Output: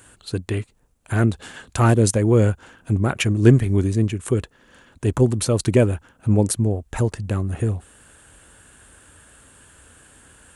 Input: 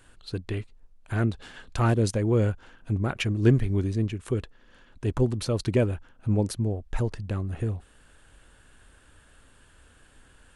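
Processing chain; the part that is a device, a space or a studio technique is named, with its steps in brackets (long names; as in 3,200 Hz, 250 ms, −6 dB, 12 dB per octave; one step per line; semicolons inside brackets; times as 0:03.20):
budget condenser microphone (high-pass filter 63 Hz; high shelf with overshoot 6,100 Hz +6 dB, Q 1.5)
level +7 dB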